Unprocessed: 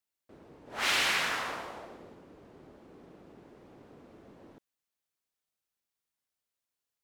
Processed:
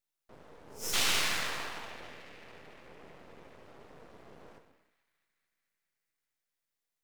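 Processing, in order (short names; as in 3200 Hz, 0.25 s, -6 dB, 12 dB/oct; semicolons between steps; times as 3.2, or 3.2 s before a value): spectral repair 0.68–0.91, 470–3800 Hz before; formant shift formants +5 st; narrowing echo 0.221 s, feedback 77%, band-pass 2000 Hz, level -16 dB; non-linear reverb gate 0.37 s falling, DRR 4.5 dB; half-wave rectifier; gain +2.5 dB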